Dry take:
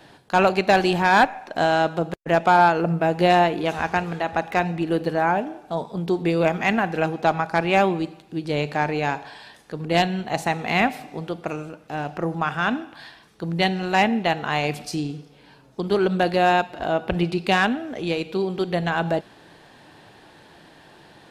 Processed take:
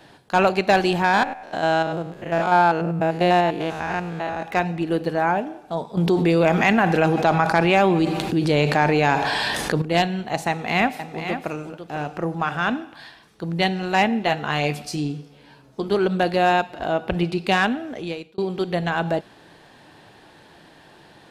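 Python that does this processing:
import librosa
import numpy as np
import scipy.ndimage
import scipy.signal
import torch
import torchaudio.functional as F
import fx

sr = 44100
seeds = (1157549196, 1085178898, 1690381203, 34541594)

y = fx.spec_steps(x, sr, hold_ms=100, at=(1.04, 4.43))
y = fx.env_flatten(y, sr, amount_pct=70, at=(5.97, 9.82))
y = fx.echo_single(y, sr, ms=501, db=-9.0, at=(10.49, 12.72))
y = fx.doubler(y, sr, ms=14.0, db=-7.0, at=(14.2, 15.89))
y = fx.edit(y, sr, fx.fade_out_span(start_s=17.91, length_s=0.47), tone=tone)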